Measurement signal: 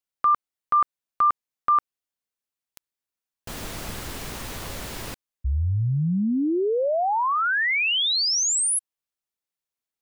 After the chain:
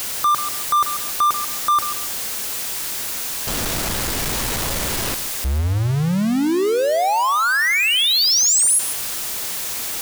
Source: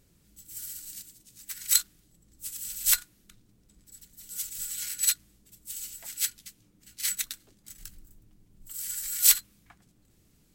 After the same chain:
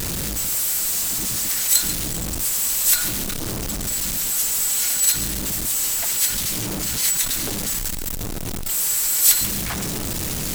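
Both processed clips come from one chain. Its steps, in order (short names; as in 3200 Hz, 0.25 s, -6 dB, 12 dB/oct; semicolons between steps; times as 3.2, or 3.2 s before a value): zero-crossing step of -21.5 dBFS; tone controls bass -1 dB, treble +3 dB; in parallel at -8 dB: overloaded stage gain 17 dB; on the sum: lo-fi delay 0.139 s, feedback 35%, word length 5-bit, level -10 dB; gain -2 dB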